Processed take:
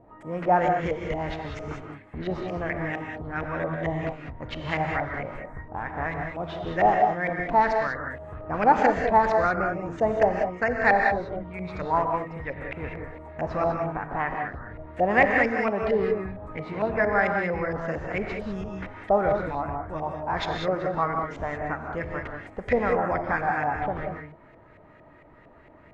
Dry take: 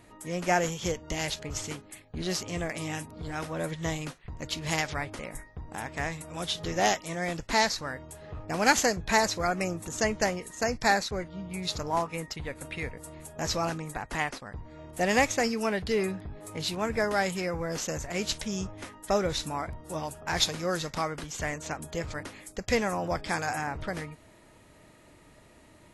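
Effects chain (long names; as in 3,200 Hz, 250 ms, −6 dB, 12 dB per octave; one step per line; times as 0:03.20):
auto-filter low-pass saw up 4.4 Hz 610–2,200 Hz
reverb whose tail is shaped and stops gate 220 ms rising, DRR 2.5 dB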